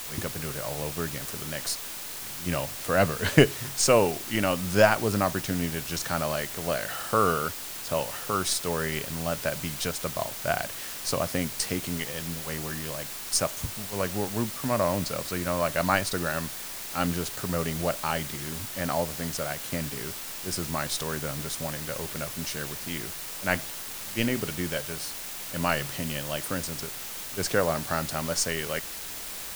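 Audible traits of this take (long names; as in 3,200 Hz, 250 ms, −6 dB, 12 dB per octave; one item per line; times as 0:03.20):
a quantiser's noise floor 6 bits, dither triangular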